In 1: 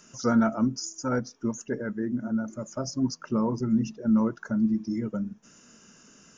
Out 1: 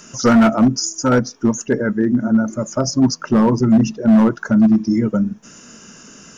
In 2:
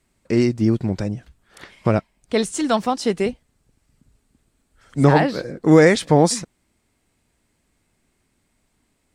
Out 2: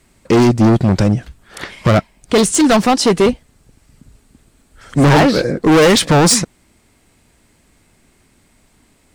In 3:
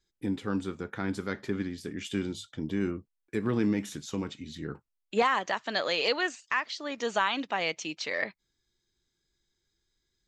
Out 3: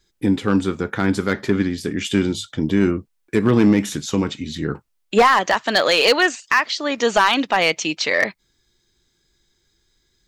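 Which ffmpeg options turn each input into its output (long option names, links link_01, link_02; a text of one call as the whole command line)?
ffmpeg -i in.wav -af "acontrast=56,asoftclip=type=hard:threshold=-14.5dB,volume=7dB" out.wav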